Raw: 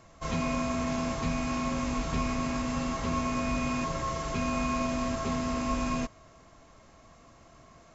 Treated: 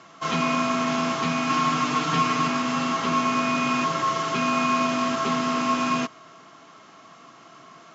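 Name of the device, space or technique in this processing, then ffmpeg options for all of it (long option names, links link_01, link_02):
television speaker: -filter_complex "[0:a]asettb=1/sr,asplit=3[link_01][link_02][link_03];[link_01]atrim=end=1.494[link_04];[link_02]atrim=start=1.49:end=2.48,asetpts=PTS-STARTPTS,afade=type=in:duration=0.004:curve=qsin,afade=type=out:start_time=0.986:duration=0.004:curve=qsin,aecho=1:1:6.6:0.71,atrim=end_sample=43659[link_05];[link_03]atrim=start=2.476[link_06];[link_04][link_05]acrossfade=duration=0.004:curve1=hsin:curve2=qsin[link_07];[link_07][link_06]acrossfade=duration=0.004:curve1=qsin:curve2=hsin,highpass=frequency=170:width=0.5412,highpass=frequency=170:width=1.3066,equalizer=frequency=220:width_type=q:width=4:gain=-5,equalizer=frequency=550:width_type=q:width=4:gain=-8,equalizer=frequency=1300:width_type=q:width=4:gain=7,equalizer=frequency=3100:width_type=q:width=4:gain=6,lowpass=frequency=6600:width=0.5412,lowpass=frequency=6600:width=1.3066,volume=8dB"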